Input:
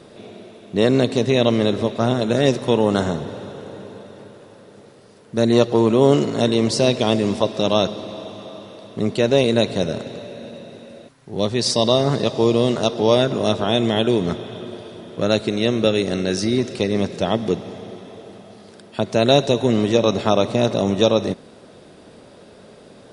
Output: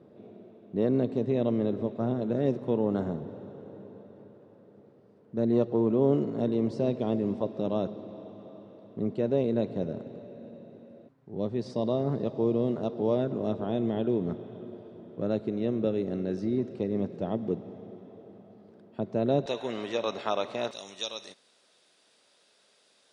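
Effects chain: band-pass 240 Hz, Q 0.57, from 19.46 s 1500 Hz, from 20.71 s 6300 Hz; gain -8 dB

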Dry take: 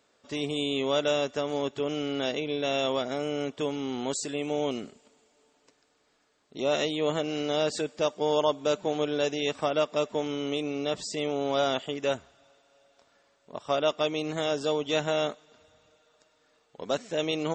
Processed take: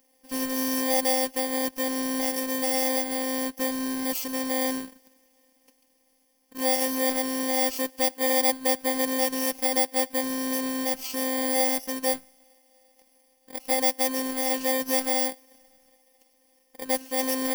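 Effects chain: FFT order left unsorted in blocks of 32 samples; robotiser 261 Hz; gain +4.5 dB

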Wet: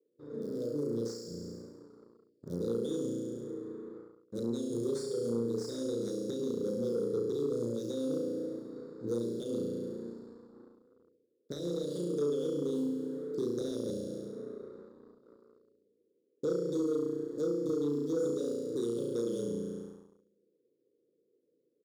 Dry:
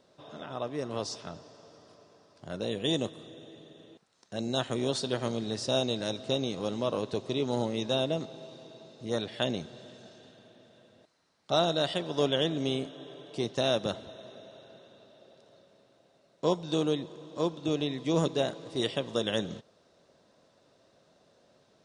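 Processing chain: Wiener smoothing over 15 samples; expander -52 dBFS; RIAA curve recording; doubler 34 ms -4 dB; flutter echo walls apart 5.9 m, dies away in 1 s; band noise 320–2100 Hz -69 dBFS; Chebyshev band-stop 490–3400 Hz, order 5; compressor 3:1, threshold -41 dBFS, peak gain reduction 14.5 dB; sample leveller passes 1; resonant high shelf 2100 Hz -13.5 dB, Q 3; gain +4.5 dB

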